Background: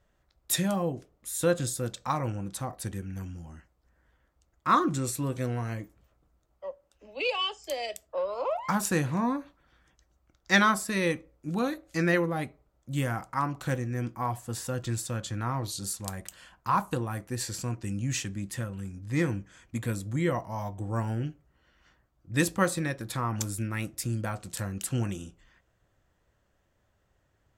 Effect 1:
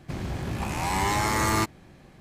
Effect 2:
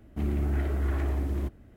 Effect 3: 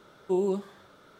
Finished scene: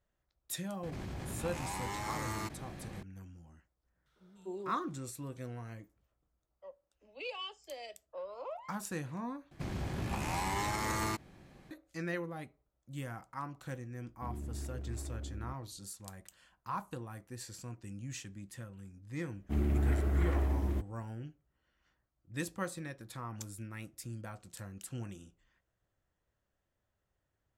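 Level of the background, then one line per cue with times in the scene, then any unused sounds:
background −12.5 dB
0:00.83: mix in 1 −16 dB + envelope flattener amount 70%
0:03.91: mix in 3 −15.5 dB + three-band delay without the direct sound lows, highs, mids 150/250 ms, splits 160/1,400 Hz
0:09.51: overwrite with 1 −6 dB + brickwall limiter −19 dBFS
0:14.05: mix in 2 −14 dB + adaptive Wiener filter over 41 samples
0:19.33: mix in 2 −1.5 dB + expander for the loud parts, over −46 dBFS

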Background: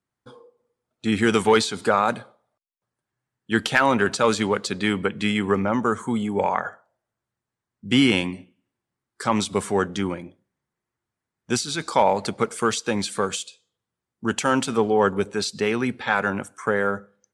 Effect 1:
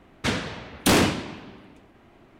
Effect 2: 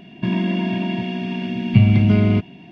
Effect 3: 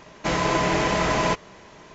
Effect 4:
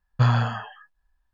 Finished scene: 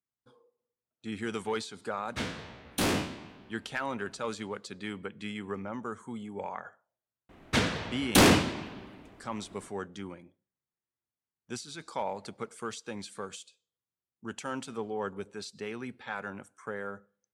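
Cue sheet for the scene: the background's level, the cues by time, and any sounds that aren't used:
background −15.5 dB
0:01.92: mix in 1 −11 dB + peak hold with a decay on every bin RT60 0.38 s
0:07.29: mix in 1 −1 dB
not used: 2, 3, 4

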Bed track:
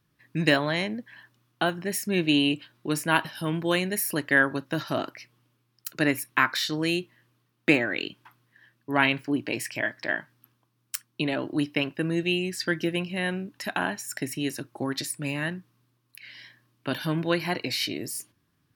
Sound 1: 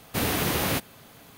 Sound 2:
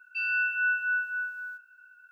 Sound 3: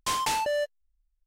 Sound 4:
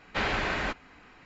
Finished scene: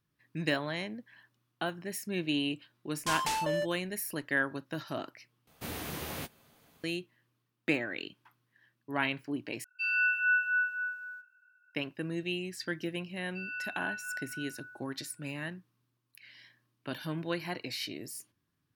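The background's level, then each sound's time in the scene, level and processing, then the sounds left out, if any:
bed track −9 dB
0:03.00: mix in 3 −4.5 dB
0:05.47: overwrite with 1 −13.5 dB + double-tracking delay 13 ms −12 dB
0:09.64: overwrite with 2 −1 dB + multiband upward and downward expander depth 40%
0:13.20: mix in 2 −12 dB
not used: 4

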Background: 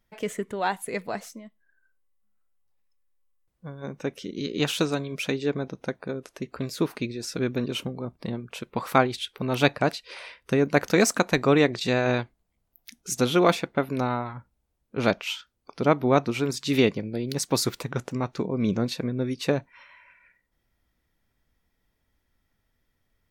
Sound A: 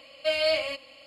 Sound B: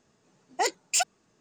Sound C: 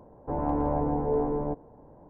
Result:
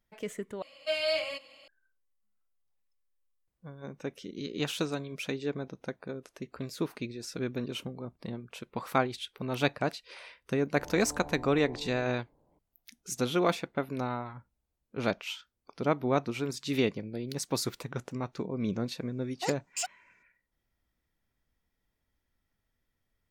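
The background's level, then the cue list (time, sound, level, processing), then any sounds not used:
background −7 dB
0:00.62: overwrite with A −4.5 dB + low-shelf EQ 130 Hz −8.5 dB
0:10.50: mix in C −17 dB
0:18.83: mix in B −9.5 dB

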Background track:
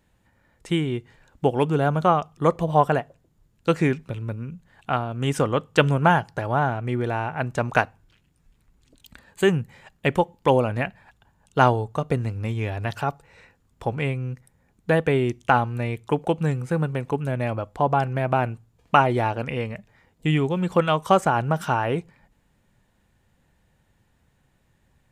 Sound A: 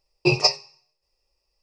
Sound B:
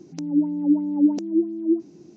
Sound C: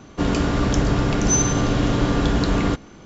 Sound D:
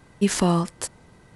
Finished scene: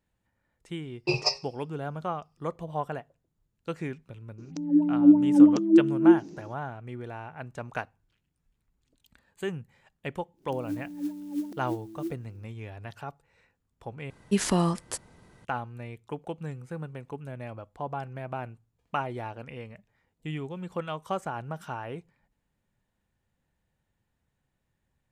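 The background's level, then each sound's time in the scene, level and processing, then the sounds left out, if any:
background track −13.5 dB
0:00.82: mix in A −7.5 dB
0:04.38: mix in B −4.5 dB + automatic gain control
0:10.34: mix in B −14 dB, fades 0.10 s + converter with an unsteady clock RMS 0.033 ms
0:14.10: overwrite with D −4 dB
not used: C

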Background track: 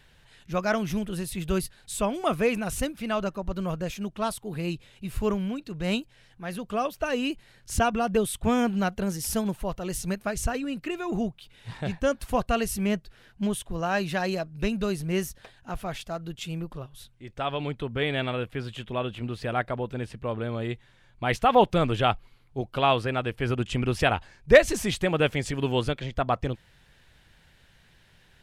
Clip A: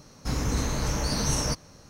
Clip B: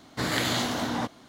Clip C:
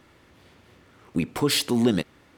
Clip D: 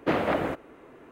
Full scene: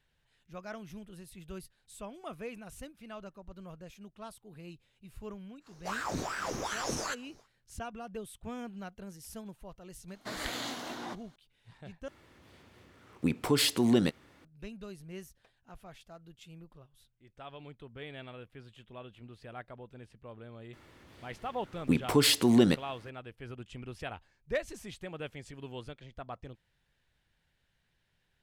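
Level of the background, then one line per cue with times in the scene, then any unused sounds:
background track −17.5 dB
0:05.60: mix in A −6.5 dB, fades 0.10 s + ring modulator whose carrier an LFO sweeps 880 Hz, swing 80%, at 2.6 Hz
0:10.08: mix in B −10 dB + high-pass filter 330 Hz 6 dB per octave
0:12.08: overwrite with C −4 dB
0:20.73: mix in C −1.5 dB
not used: D

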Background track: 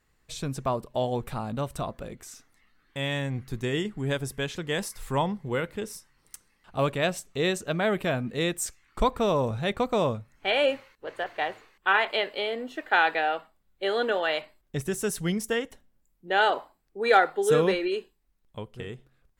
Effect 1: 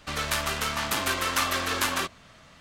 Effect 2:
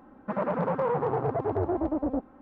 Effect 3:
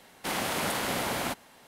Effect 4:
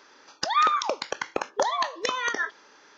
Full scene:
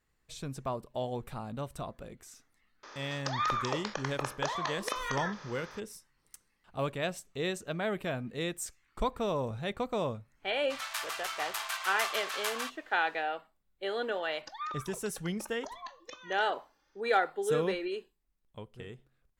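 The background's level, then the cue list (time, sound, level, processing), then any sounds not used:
background track −7.5 dB
0:02.83: mix in 4 −11.5 dB + compressor on every frequency bin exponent 0.6
0:10.63: mix in 1 −8.5 dB + Butterworth high-pass 700 Hz 48 dB per octave
0:14.04: mix in 4 −16.5 dB + barber-pole flanger 2.7 ms +1.3 Hz
not used: 2, 3

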